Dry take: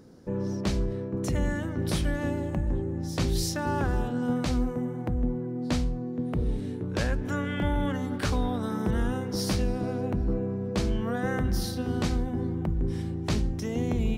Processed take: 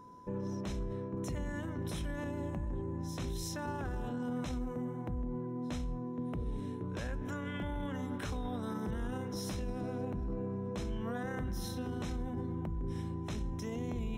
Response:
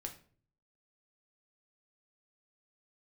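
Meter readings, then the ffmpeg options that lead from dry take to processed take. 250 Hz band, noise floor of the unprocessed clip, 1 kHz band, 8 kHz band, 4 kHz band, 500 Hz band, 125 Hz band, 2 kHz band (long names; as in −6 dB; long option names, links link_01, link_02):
−9.0 dB, −34 dBFS, −8.0 dB, −10.0 dB, −11.5 dB, −9.0 dB, −9.5 dB, −10.0 dB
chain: -af "aeval=exprs='val(0)+0.00501*sin(2*PI*1000*n/s)':channel_layout=same,alimiter=limit=-23.5dB:level=0:latency=1:release=26,asuperstop=centerf=4600:order=20:qfactor=7,volume=-6.5dB"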